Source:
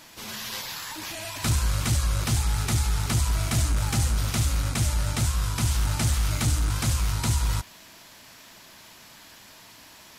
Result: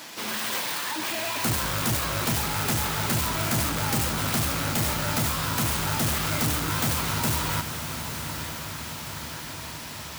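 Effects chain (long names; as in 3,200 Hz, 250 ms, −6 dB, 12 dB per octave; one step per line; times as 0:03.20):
stylus tracing distortion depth 0.47 ms
high-pass filter 190 Hz 12 dB per octave
soft clipping −28 dBFS, distortion −12 dB
feedback delay with all-pass diffusion 952 ms, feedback 66%, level −9 dB
level +8 dB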